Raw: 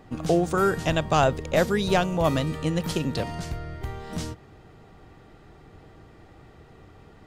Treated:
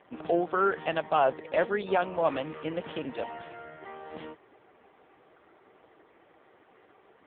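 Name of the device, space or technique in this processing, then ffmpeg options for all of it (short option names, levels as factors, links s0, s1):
telephone: -filter_complex "[0:a]asplit=3[s0][s1][s2];[s0]afade=t=out:st=1.19:d=0.02[s3];[s1]lowpass=f=5900:w=0.5412,lowpass=f=5900:w=1.3066,afade=t=in:st=1.19:d=0.02,afade=t=out:st=2.21:d=0.02[s4];[s2]afade=t=in:st=2.21:d=0.02[s5];[s3][s4][s5]amix=inputs=3:normalize=0,highpass=390,lowpass=3600,asoftclip=type=tanh:threshold=0.251" -ar 8000 -c:a libopencore_amrnb -b:a 5150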